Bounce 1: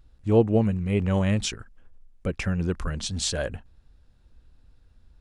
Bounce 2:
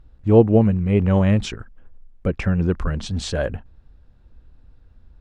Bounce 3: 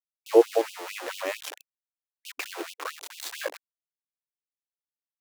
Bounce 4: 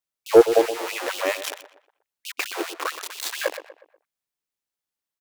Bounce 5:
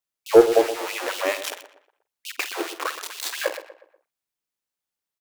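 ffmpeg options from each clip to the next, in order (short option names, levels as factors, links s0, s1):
-af "lowpass=f=1600:p=1,volume=2.11"
-af "aeval=exprs='val(0)*gte(abs(val(0)),0.0562)':c=same,afftfilt=real='re*gte(b*sr/1024,270*pow(2600/270,0.5+0.5*sin(2*PI*4.5*pts/sr)))':imag='im*gte(b*sr/1024,270*pow(2600/270,0.5+0.5*sin(2*PI*4.5*pts/sr)))':win_size=1024:overlap=0.75,volume=0.794"
-filter_complex "[0:a]acontrast=77,asplit=2[s0][s1];[s1]adelay=121,lowpass=f=2300:p=1,volume=0.251,asplit=2[s2][s3];[s3]adelay=121,lowpass=f=2300:p=1,volume=0.43,asplit=2[s4][s5];[s5]adelay=121,lowpass=f=2300:p=1,volume=0.43,asplit=2[s6][s7];[s7]adelay=121,lowpass=f=2300:p=1,volume=0.43[s8];[s0][s2][s4][s6][s8]amix=inputs=5:normalize=0"
-filter_complex "[0:a]asplit=2[s0][s1];[s1]adelay=49,volume=0.224[s2];[s0][s2]amix=inputs=2:normalize=0"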